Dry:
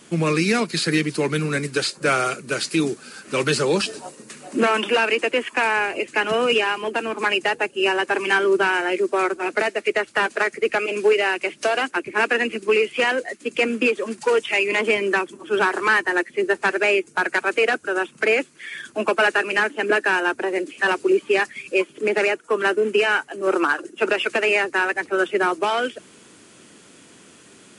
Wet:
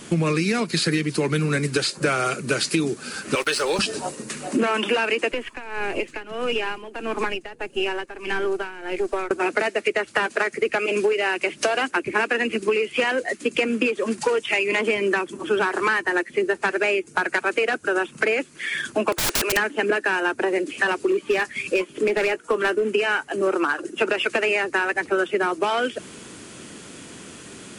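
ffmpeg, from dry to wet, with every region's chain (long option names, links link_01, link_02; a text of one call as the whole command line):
ffmpeg -i in.wav -filter_complex "[0:a]asettb=1/sr,asplit=3[link_01][link_02][link_03];[link_01]atrim=end=3.354[link_04];[link_02]atrim=start=3.35:end=3.79,asetpts=PTS-STARTPTS,afade=type=in:duration=0.004:curve=qsin,afade=type=out:start_time=0.436:duration=0.004:curve=qsin,highpass=560,bandreject=frequency=7000:width=8.2,aeval=exprs='sgn(val(0))*max(abs(val(0))-0.00841,0)':channel_layout=same[link_05];[link_03]atrim=start=3.786[link_06];[link_04][link_05]acrossfade=duration=0.004:curve1=hsin:curve2=qsin[link_07];[link_07][link_06]acrossfade=duration=0.004:curve1=qsin:curve2=hsin,asettb=1/sr,asplit=3[link_08][link_09][link_10];[link_08]atrim=end=5.324[link_11];[link_09]atrim=start=5.32:end=9.31,asetpts=PTS-STARTPTS,afade=type=in:duration=0.004:curve=qsin,afade=type=out:start_time=3.986:duration=0.004:curve=qsin,aeval=exprs='if(lt(val(0),0),0.708*val(0),val(0))':channel_layout=same,acrossover=split=460|5600[link_12][link_13][link_14];[link_12]acompressor=threshold=-35dB:ratio=4[link_15];[link_13]acompressor=threshold=-31dB:ratio=4[link_16];[link_14]acompressor=threshold=-58dB:ratio=4[link_17];[link_15][link_16][link_17]amix=inputs=3:normalize=0,tremolo=f=1.6:d=0.82[link_18];[link_10]atrim=start=9.306[link_19];[link_11][link_18]acrossfade=duration=0.004:curve1=hsin:curve2=qsin[link_20];[link_20][link_19]acrossfade=duration=0.004:curve1=qsin:curve2=hsin,asettb=1/sr,asplit=3[link_21][link_22][link_23];[link_21]atrim=end=19.124[link_24];[link_22]atrim=start=19.12:end=19.57,asetpts=PTS-STARTPTS,afade=type=in:duration=0.004:curve=qsin,afade=type=out:start_time=0.446:duration=0.004:curve=qsin,highpass=frequency=350:width=0.5412,highpass=frequency=350:width=1.3066,aeval=exprs='(mod(9.44*val(0)+1,2)-1)/9.44':channel_layout=same[link_25];[link_23]atrim=start=19.566[link_26];[link_24][link_25]acrossfade=duration=0.004:curve1=hsin:curve2=qsin[link_27];[link_27][link_26]acrossfade=duration=0.004:curve1=qsin:curve2=hsin,asettb=1/sr,asplit=3[link_28][link_29][link_30];[link_28]atrim=end=20.994[link_31];[link_29]atrim=start=20.99:end=22.84,asetpts=PTS-STARTPTS,afade=type=in:duration=0.004:curve=qsin,afade=type=out:start_time=1.846:duration=0.004:curve=qsin,asplit=2[link_32][link_33];[link_33]adelay=17,volume=-13.5dB[link_34];[link_32][link_34]amix=inputs=2:normalize=0,atrim=end_sample=81585,asoftclip=type=hard:threshold=-13dB[link_35];[link_30]atrim=start=22.836[link_36];[link_31][link_35]acrossfade=duration=0.004:curve1=hsin:curve2=qsin[link_37];[link_37][link_36]acrossfade=duration=0.004:curve1=qsin:curve2=hsin,lowshelf=frequency=110:gain=9,acompressor=threshold=-26dB:ratio=6,volume=7dB" out.wav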